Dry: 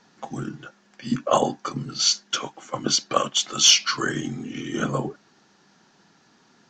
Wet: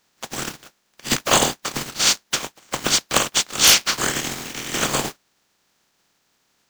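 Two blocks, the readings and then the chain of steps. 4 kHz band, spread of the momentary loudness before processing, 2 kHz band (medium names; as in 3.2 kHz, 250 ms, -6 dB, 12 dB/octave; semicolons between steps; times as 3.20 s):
+2.0 dB, 18 LU, +7.0 dB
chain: spectral contrast reduction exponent 0.27; waveshaping leveller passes 2; trim -4 dB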